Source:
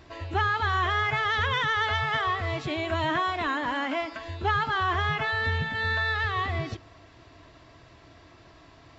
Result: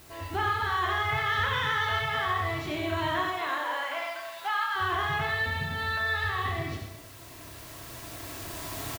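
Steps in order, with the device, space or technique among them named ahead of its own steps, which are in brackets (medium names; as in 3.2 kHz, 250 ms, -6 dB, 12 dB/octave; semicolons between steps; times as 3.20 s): 3.25–4.74 s: high-pass 330 Hz -> 890 Hz 24 dB/octave; reverse bouncing-ball echo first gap 30 ms, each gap 1.4×, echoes 5; delay 91 ms -5.5 dB; cheap recorder with automatic gain (white noise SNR 24 dB; recorder AGC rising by 6.9 dB/s); trim -5 dB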